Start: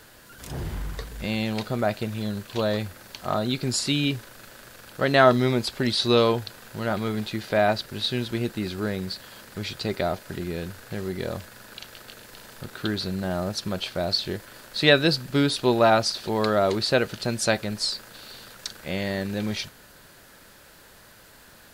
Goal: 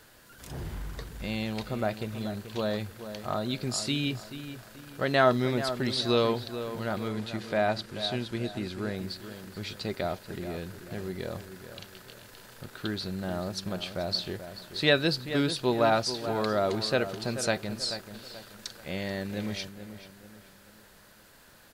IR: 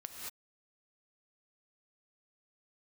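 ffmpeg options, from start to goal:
-filter_complex "[0:a]asettb=1/sr,asplit=3[link_01][link_02][link_03];[link_01]atrim=end=7.084[link_04];[link_02]atrim=start=7.08:end=8.96,asetpts=PTS-STARTPTS,afade=type=in:duration=0.004:curve=qsin,afade=type=out:start_time=1.876:duration=0.004:curve=qsin,lowpass=11000[link_05];[link_03]atrim=start=8.956[link_06];[link_04][link_05]acrossfade=duration=0.004:curve1=hsin:curve2=qsin[link_07];[link_07][link_06]acrossfade=duration=0.004:curve1=qsin:curve2=hsin,asplit=2[link_08][link_09];[link_09]adelay=434,lowpass=frequency=2500:poles=1,volume=-10.5dB,asplit=2[link_10][link_11];[link_11]adelay=434,lowpass=frequency=2500:poles=1,volume=0.4,asplit=2[link_12][link_13];[link_13]adelay=434,lowpass=frequency=2500:poles=1,volume=0.4,asplit=2[link_14][link_15];[link_15]adelay=434,lowpass=frequency=2500:poles=1,volume=0.4[link_16];[link_08][link_10][link_12][link_14][link_16]amix=inputs=5:normalize=0,volume=-5.5dB"

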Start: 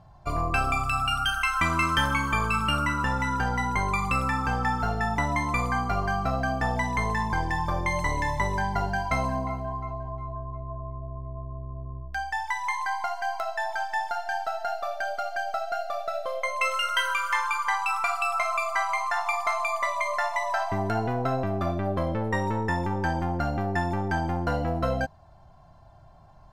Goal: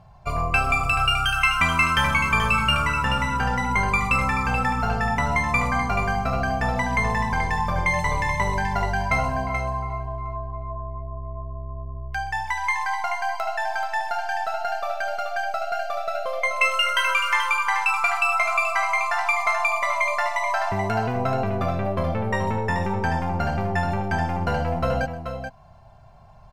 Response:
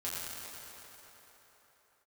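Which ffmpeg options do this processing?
-af "superequalizer=6b=0.316:12b=1.78,aecho=1:1:126|431:0.112|0.422,volume=2.5dB"

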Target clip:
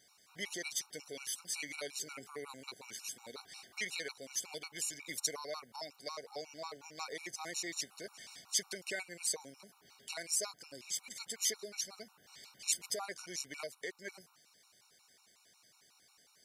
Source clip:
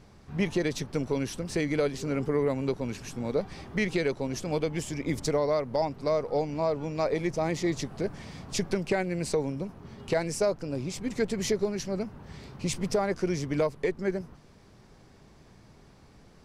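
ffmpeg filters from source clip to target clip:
ffmpeg -i in.wav -af "aderivative,afftfilt=real='re*gt(sin(2*PI*5.5*pts/sr)*(1-2*mod(floor(b*sr/1024/740),2)),0)':imag='im*gt(sin(2*PI*5.5*pts/sr)*(1-2*mod(floor(b*sr/1024/740),2)),0)':win_size=1024:overlap=0.75,volume=7dB" out.wav

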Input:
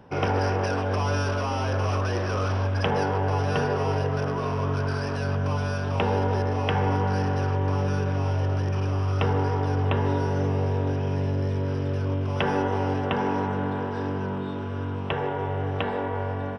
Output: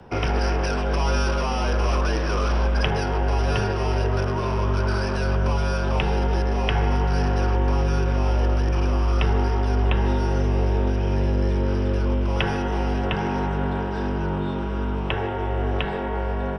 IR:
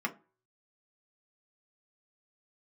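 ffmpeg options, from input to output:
-filter_complex "[0:a]afreqshift=-37,acrossover=split=170|1700[link_01][link_02][link_03];[link_02]alimiter=limit=-24dB:level=0:latency=1:release=350[link_04];[link_01][link_04][link_03]amix=inputs=3:normalize=0,volume=5dB"

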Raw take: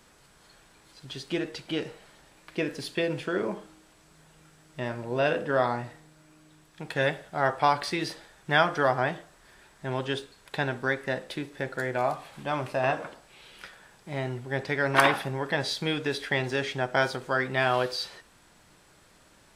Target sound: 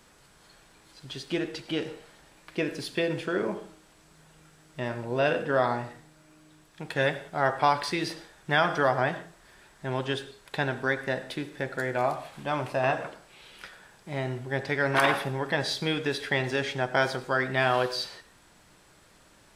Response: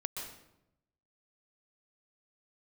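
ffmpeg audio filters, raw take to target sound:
-filter_complex "[0:a]asplit=2[link_01][link_02];[1:a]atrim=start_sample=2205,afade=type=out:start_time=0.35:duration=0.01,atrim=end_sample=15876,asetrate=66150,aresample=44100[link_03];[link_02][link_03]afir=irnorm=-1:irlink=0,volume=-7.5dB[link_04];[link_01][link_04]amix=inputs=2:normalize=0,alimiter=level_in=7.5dB:limit=-1dB:release=50:level=0:latency=1,volume=-9dB"

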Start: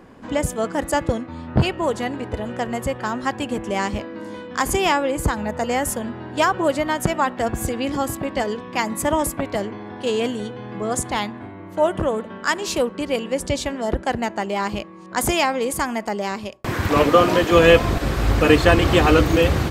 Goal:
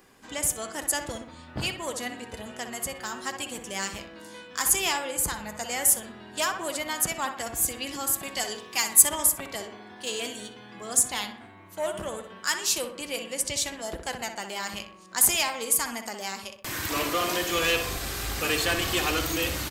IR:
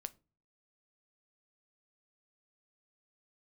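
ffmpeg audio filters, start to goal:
-filter_complex "[0:a]asettb=1/sr,asplit=3[link_01][link_02][link_03];[link_01]atrim=end=8.184[link_04];[link_02]atrim=start=8.18:end=9.09,asetpts=PTS-STARTPTS,afade=type=in:duration=0.004:curve=qsin,afade=type=out:start_time=0.906:duration=0.004:curve=qsin,highshelf=frequency=3400:gain=8.5[link_05];[link_03]atrim=start=9.086[link_06];[link_04][link_05]acrossfade=duration=0.004:curve1=hsin:curve2=qsin[link_07];[link_07][link_06]acrossfade=duration=0.004:curve1=qsin:curve2=hsin,asplit=2[link_08][link_09];[link_09]adelay=62,lowpass=frequency=2400:poles=1,volume=-7.5dB,asplit=2[link_10][link_11];[link_11]adelay=62,lowpass=frequency=2400:poles=1,volume=0.52,asplit=2[link_12][link_13];[link_13]adelay=62,lowpass=frequency=2400:poles=1,volume=0.52,asplit=2[link_14][link_15];[link_15]adelay=62,lowpass=frequency=2400:poles=1,volume=0.52,asplit=2[link_16][link_17];[link_17]adelay=62,lowpass=frequency=2400:poles=1,volume=0.52,asplit=2[link_18][link_19];[link_19]adelay=62,lowpass=frequency=2400:poles=1,volume=0.52[link_20];[link_10][link_12][link_14][link_16][link_18][link_20]amix=inputs=6:normalize=0[link_21];[link_08][link_21]amix=inputs=2:normalize=0,flanger=delay=2.5:depth=3.5:regen=69:speed=0.11:shape=sinusoidal,asoftclip=type=tanh:threshold=-12dB,crystalizer=i=10:c=0,volume=-11dB"

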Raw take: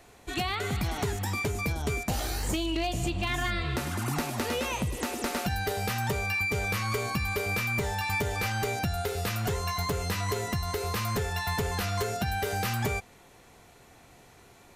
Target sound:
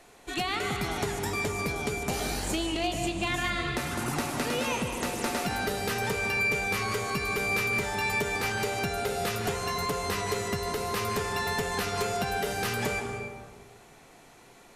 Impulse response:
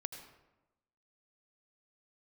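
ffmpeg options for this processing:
-filter_complex "[0:a]equalizer=frequency=74:width_type=o:width=1.5:gain=-11.5[link_01];[1:a]atrim=start_sample=2205,asetrate=23373,aresample=44100[link_02];[link_01][link_02]afir=irnorm=-1:irlink=0"

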